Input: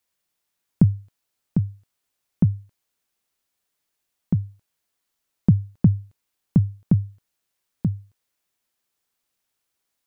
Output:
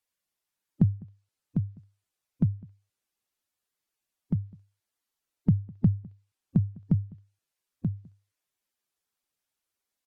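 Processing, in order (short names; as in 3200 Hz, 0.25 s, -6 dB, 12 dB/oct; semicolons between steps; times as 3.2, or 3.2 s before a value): bin magnitudes rounded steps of 15 dB; outdoor echo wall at 35 m, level -24 dB; treble ducked by the level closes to 770 Hz, closed at -15 dBFS; gain -6 dB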